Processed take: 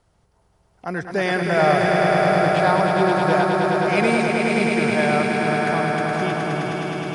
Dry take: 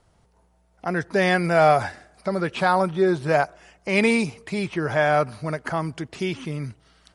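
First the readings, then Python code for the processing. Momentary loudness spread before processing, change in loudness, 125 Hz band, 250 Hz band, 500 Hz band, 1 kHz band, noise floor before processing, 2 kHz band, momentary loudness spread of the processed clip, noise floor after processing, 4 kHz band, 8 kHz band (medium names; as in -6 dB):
13 LU, +3.5 dB, +3.5 dB, +4.0 dB, +3.5 dB, +4.0 dB, -62 dBFS, +4.0 dB, 7 LU, -62 dBFS, +4.0 dB, +3.5 dB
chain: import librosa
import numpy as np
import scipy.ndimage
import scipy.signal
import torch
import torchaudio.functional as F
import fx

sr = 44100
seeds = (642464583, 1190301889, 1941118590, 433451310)

y = fx.echo_swell(x, sr, ms=105, loudest=5, wet_db=-5)
y = y * 10.0 ** (-2.0 / 20.0)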